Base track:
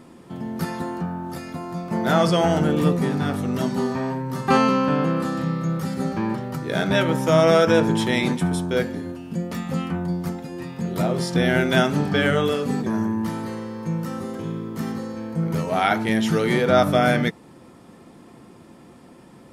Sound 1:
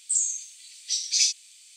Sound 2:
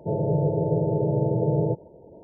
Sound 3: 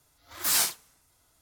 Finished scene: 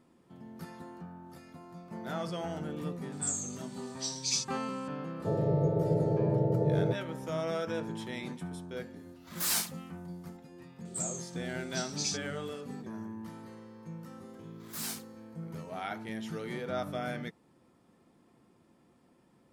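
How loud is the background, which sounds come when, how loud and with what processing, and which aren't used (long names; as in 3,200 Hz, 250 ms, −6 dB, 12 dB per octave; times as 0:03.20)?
base track −18 dB
0:03.12: mix in 1 −9.5 dB
0:05.19: mix in 2 −5 dB
0:08.96: mix in 3 −6 dB
0:10.85: mix in 1 −12.5 dB
0:14.29: mix in 3 −14.5 dB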